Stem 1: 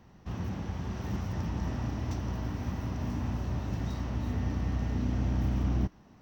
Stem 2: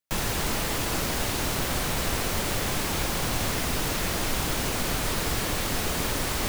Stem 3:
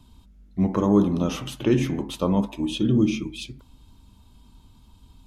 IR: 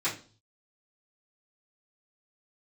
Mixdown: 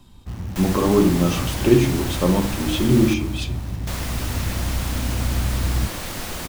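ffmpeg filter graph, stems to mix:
-filter_complex "[0:a]acrusher=bits=8:dc=4:mix=0:aa=0.000001,lowshelf=frequency=120:gain=10.5,volume=-1dB[link_01];[1:a]bandreject=frequency=430:width=12,adelay=450,volume=-2.5dB,asplit=3[link_02][link_03][link_04];[link_02]atrim=end=3.14,asetpts=PTS-STARTPTS,afade=type=out:start_time=3.136:duration=0.004:curve=hsin[link_05];[link_03]atrim=start=3.14:end=3.87,asetpts=PTS-STARTPTS,volume=0[link_06];[link_04]atrim=start=3.87,asetpts=PTS-STARTPTS,afade=type=in:duration=0.004:curve=hsin[link_07];[link_05][link_06][link_07]concat=n=3:v=0:a=1,asplit=2[link_08][link_09];[link_09]volume=-12.5dB[link_10];[2:a]volume=2dB,asplit=2[link_11][link_12];[link_12]volume=-11.5dB[link_13];[3:a]atrim=start_sample=2205[link_14];[link_13][link_14]afir=irnorm=-1:irlink=0[link_15];[link_10]aecho=0:1:309|618|927|1236|1545|1854|2163|2472:1|0.52|0.27|0.141|0.0731|0.038|0.0198|0.0103[link_16];[link_01][link_08][link_11][link_15][link_16]amix=inputs=5:normalize=0"

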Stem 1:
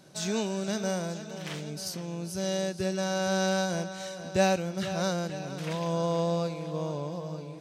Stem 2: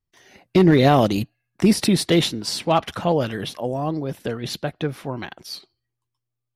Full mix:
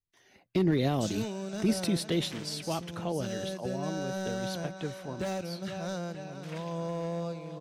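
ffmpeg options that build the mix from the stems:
ffmpeg -i stem1.wav -i stem2.wav -filter_complex "[0:a]asoftclip=type=hard:threshold=-23dB,adynamicequalizer=threshold=0.00398:dfrequency=3100:dqfactor=0.7:tfrequency=3100:tqfactor=0.7:attack=5:release=100:ratio=0.375:range=2.5:mode=cutabove:tftype=highshelf,adelay=850,volume=-5dB[link_01];[1:a]volume=-11dB[link_02];[link_01][link_02]amix=inputs=2:normalize=0,acrossover=split=440|3000[link_03][link_04][link_05];[link_04]acompressor=threshold=-37dB:ratio=2.5[link_06];[link_03][link_06][link_05]amix=inputs=3:normalize=0" out.wav

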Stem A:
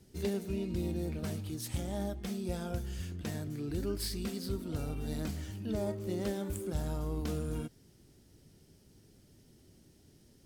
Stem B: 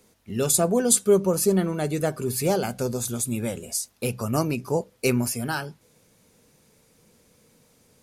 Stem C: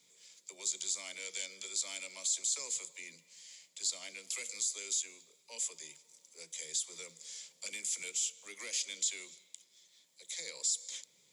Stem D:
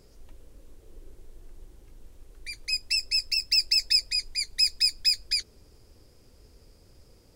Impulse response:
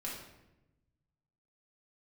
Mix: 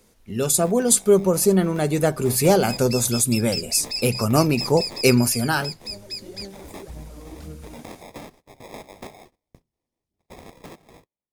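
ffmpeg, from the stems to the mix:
-filter_complex "[0:a]alimiter=level_in=5.5dB:limit=-24dB:level=0:latency=1,volume=-5.5dB,aphaser=in_gain=1:out_gain=1:delay=4:decay=0.68:speed=1.9:type=sinusoidal,adelay=150,volume=-9dB[link_01];[1:a]volume=1dB,asplit=2[link_02][link_03];[2:a]acrusher=samples=30:mix=1:aa=0.000001,acrossover=split=170|3000[link_04][link_05][link_06];[link_04]acompressor=threshold=-47dB:ratio=6[link_07];[link_07][link_05][link_06]amix=inputs=3:normalize=0,volume=-4.5dB[link_08];[3:a]volume=-12dB,asplit=2[link_09][link_10];[link_10]volume=-4dB[link_11];[link_03]apad=whole_len=467545[link_12];[link_01][link_12]sidechaincompress=threshold=-38dB:ratio=8:attack=16:release=593[link_13];[link_13][link_08]amix=inputs=2:normalize=0,agate=range=-26dB:threshold=-53dB:ratio=16:detection=peak,acompressor=threshold=-41dB:ratio=5,volume=0dB[link_14];[link_11]aecho=0:1:1053:1[link_15];[link_02][link_09][link_14][link_15]amix=inputs=4:normalize=0,dynaudnorm=framelen=210:gausssize=9:maxgain=6.5dB"

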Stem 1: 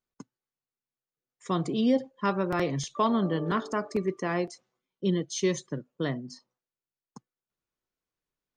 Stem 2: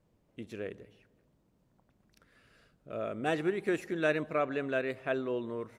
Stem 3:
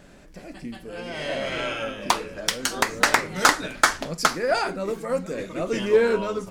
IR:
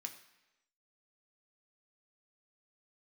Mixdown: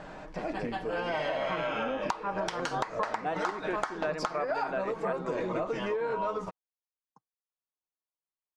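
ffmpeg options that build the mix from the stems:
-filter_complex "[0:a]afwtdn=0.0224,volume=-5.5dB[link_01];[1:a]volume=-5dB[link_02];[2:a]volume=0dB[link_03];[link_01][link_03]amix=inputs=2:normalize=0,aecho=1:1:6.4:0.36,acompressor=threshold=-31dB:ratio=6,volume=0dB[link_04];[link_02][link_04]amix=inputs=2:normalize=0,lowpass=5300,equalizer=frequency=900:width=0.99:gain=14.5,acompressor=threshold=-28dB:ratio=5"

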